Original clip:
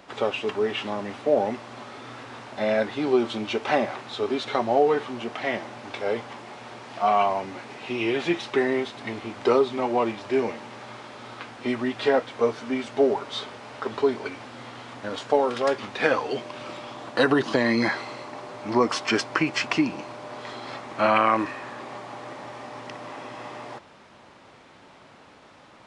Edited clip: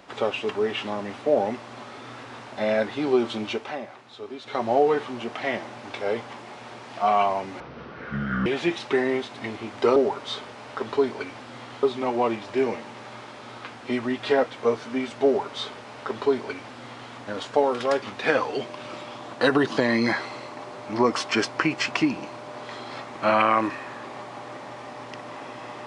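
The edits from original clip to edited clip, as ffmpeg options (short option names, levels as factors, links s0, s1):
-filter_complex "[0:a]asplit=7[s0][s1][s2][s3][s4][s5][s6];[s0]atrim=end=3.73,asetpts=PTS-STARTPTS,afade=t=out:st=3.48:d=0.25:silence=0.281838[s7];[s1]atrim=start=3.73:end=4.42,asetpts=PTS-STARTPTS,volume=0.282[s8];[s2]atrim=start=4.42:end=7.604,asetpts=PTS-STARTPTS,afade=t=in:d=0.25:silence=0.281838[s9];[s3]atrim=start=7.6:end=8.09,asetpts=PTS-STARTPTS,asetrate=25137,aresample=44100[s10];[s4]atrim=start=8.086:end=9.592[s11];[s5]atrim=start=13.008:end=14.882[s12];[s6]atrim=start=9.588[s13];[s7][s8][s9]concat=n=3:v=0:a=1[s14];[s14][s10]acrossfade=d=0.004:c1=hsin:c2=hsin[s15];[s15][s11]acrossfade=d=0.004:c1=hsin:c2=hsin[s16];[s16][s12]acrossfade=d=0.004:c1=hsin:c2=hsin[s17];[s17][s13]acrossfade=d=0.004:c1=hsin:c2=hsin"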